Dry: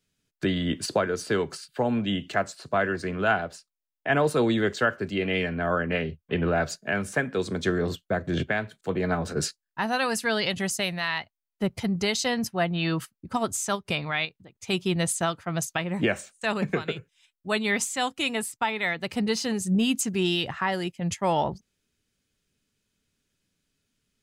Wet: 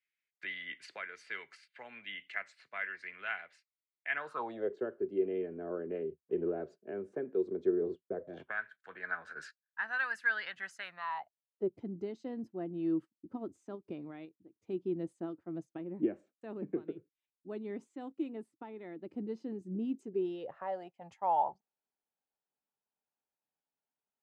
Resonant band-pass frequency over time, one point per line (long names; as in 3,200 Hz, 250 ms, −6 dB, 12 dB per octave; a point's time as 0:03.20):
resonant band-pass, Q 5.7
0:04.12 2,100 Hz
0:04.77 380 Hz
0:08.13 380 Hz
0:08.62 1,600 Hz
0:10.81 1,600 Hz
0:11.76 320 Hz
0:19.85 320 Hz
0:21.04 820 Hz